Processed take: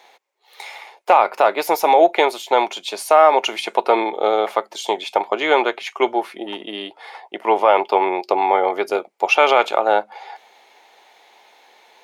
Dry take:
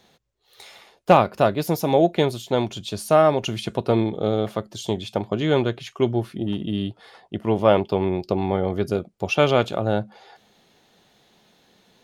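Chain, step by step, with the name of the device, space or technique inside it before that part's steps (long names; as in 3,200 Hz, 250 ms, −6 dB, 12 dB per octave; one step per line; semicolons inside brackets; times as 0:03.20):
laptop speaker (high-pass filter 380 Hz 24 dB per octave; parametric band 870 Hz +12 dB 0.57 octaves; parametric band 2,200 Hz +10.5 dB 0.47 octaves; brickwall limiter −7 dBFS, peak gain reduction 11 dB)
dynamic equaliser 1,300 Hz, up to +5 dB, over −38 dBFS, Q 3.7
level +4 dB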